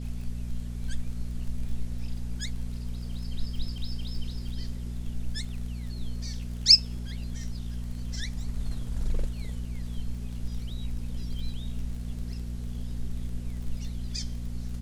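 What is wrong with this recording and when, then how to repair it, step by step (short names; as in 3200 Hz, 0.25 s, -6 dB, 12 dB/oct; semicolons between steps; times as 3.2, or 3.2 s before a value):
crackle 25/s -38 dBFS
hum 60 Hz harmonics 4 -35 dBFS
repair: de-click; de-hum 60 Hz, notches 4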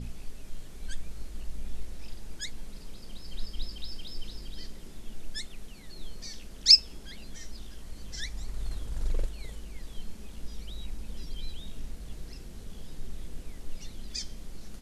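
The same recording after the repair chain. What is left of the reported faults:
none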